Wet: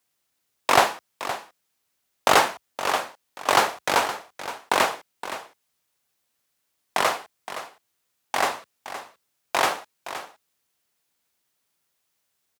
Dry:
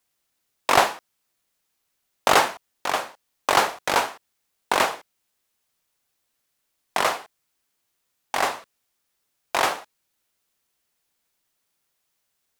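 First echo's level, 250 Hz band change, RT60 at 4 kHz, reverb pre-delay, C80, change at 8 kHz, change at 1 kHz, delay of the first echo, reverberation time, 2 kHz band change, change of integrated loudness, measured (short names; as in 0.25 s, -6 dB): -12.5 dB, 0.0 dB, none, none, none, 0.0 dB, 0.0 dB, 0.518 s, none, 0.0 dB, -0.5 dB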